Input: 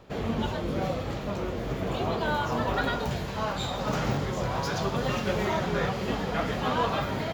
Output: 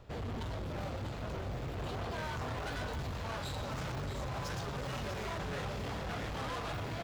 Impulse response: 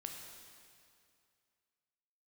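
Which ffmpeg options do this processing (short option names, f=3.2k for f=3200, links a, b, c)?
-af "lowshelf=f=130:t=q:w=1.5:g=8.5,bandreject=f=50:t=h:w=6,bandreject=f=100:t=h:w=6,asoftclip=type=hard:threshold=-31dB,aecho=1:1:672:0.376,asetrate=45938,aresample=44100,volume=-6dB"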